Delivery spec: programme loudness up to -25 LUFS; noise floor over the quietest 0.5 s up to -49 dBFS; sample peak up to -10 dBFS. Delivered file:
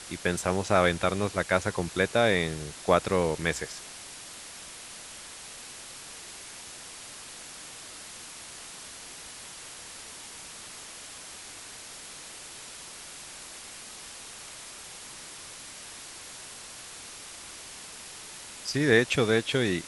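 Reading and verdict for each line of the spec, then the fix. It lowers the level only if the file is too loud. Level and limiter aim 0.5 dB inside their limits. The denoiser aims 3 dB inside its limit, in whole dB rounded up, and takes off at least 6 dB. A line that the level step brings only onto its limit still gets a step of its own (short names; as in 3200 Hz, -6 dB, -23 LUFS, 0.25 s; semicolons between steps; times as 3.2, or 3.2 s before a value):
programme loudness -32.0 LUFS: OK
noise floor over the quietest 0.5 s -44 dBFS: fail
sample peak -6.0 dBFS: fail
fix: denoiser 8 dB, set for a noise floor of -44 dBFS; limiter -10.5 dBFS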